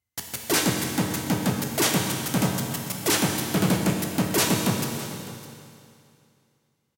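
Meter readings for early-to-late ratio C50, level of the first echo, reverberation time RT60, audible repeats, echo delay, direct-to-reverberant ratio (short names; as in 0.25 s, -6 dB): 2.5 dB, -16.5 dB, 2.5 s, 1, 0.608 s, 0.5 dB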